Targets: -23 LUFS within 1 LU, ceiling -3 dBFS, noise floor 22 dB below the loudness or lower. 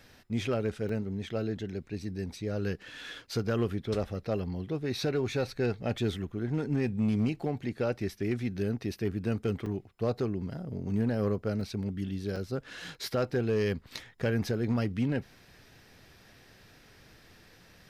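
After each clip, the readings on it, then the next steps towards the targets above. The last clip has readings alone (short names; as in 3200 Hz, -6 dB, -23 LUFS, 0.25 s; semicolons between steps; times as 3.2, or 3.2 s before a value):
clipped 0.5%; flat tops at -21.5 dBFS; dropouts 4; longest dropout 3.4 ms; loudness -32.5 LUFS; peak -21.5 dBFS; loudness target -23.0 LUFS
-> clip repair -21.5 dBFS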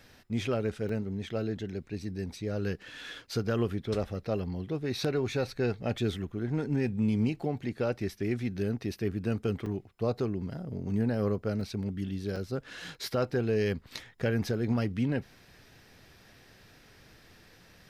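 clipped 0.0%; dropouts 4; longest dropout 3.4 ms
-> interpolate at 0.89/9.66/11.61/12.36, 3.4 ms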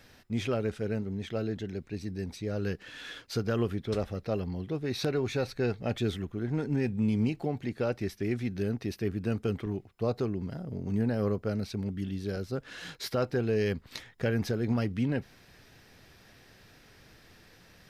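dropouts 0; loudness -32.5 LUFS; peak -14.0 dBFS; loudness target -23.0 LUFS
-> gain +9.5 dB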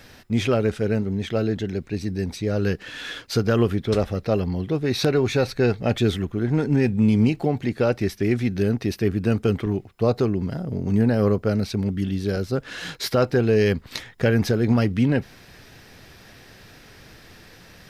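loudness -23.0 LUFS; peak -4.5 dBFS; noise floor -48 dBFS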